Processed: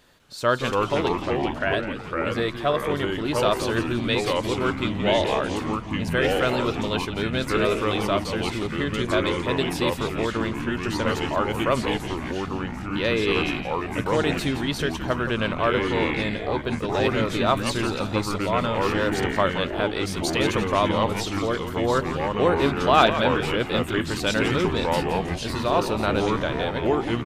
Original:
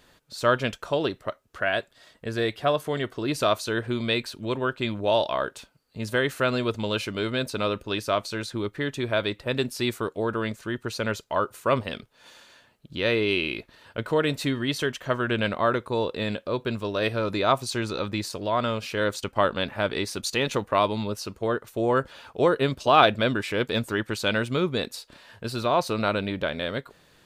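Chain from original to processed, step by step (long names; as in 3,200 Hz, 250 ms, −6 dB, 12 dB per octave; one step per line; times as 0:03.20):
delay with pitch and tempo change per echo 200 ms, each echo −3 semitones, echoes 3
echo with shifted repeats 170 ms, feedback 47%, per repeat −110 Hz, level −10.5 dB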